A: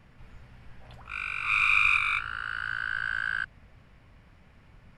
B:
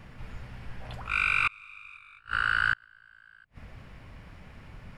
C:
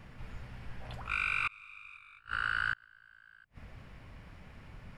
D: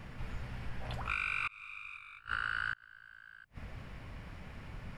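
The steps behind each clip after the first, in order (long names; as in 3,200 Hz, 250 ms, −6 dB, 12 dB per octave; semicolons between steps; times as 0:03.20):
gate with flip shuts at −22 dBFS, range −33 dB; level +8 dB
brickwall limiter −18.5 dBFS, peak gain reduction 4.5 dB; level −3.5 dB
downward compressor 5 to 1, threshold −36 dBFS, peak gain reduction 8.5 dB; level +4 dB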